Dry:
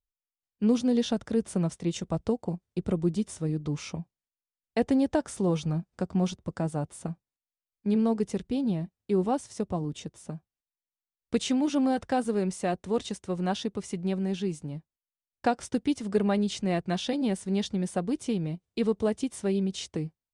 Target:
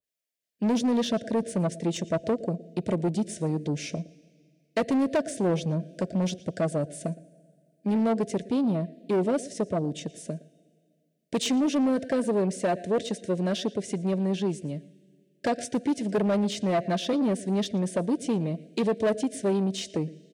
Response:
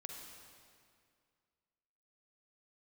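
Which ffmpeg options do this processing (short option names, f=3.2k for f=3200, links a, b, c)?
-filter_complex "[0:a]asuperstop=centerf=1000:order=12:qfactor=1.1,equalizer=f=680:t=o:w=0.25:g=15,aecho=1:1:115:0.0891,asplit=2[a][b];[1:a]atrim=start_sample=2205[c];[b][c]afir=irnorm=-1:irlink=0,volume=-16.5dB[d];[a][d]amix=inputs=2:normalize=0,asoftclip=type=tanh:threshold=-25dB,highpass=170,asoftclip=type=hard:threshold=-24dB,adynamicequalizer=threshold=0.00316:dfrequency=2000:dqfactor=0.7:tfrequency=2000:tqfactor=0.7:attack=5:release=100:ratio=0.375:range=3:mode=cutabove:tftype=highshelf,volume=6dB"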